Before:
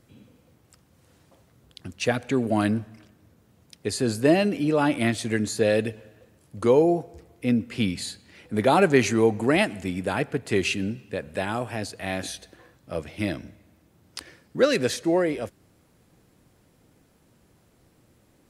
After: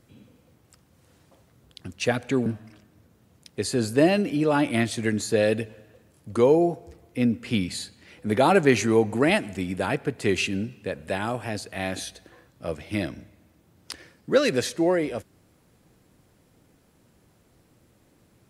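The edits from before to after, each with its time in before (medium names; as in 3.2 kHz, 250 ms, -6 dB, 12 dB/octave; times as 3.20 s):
2.46–2.73 s: delete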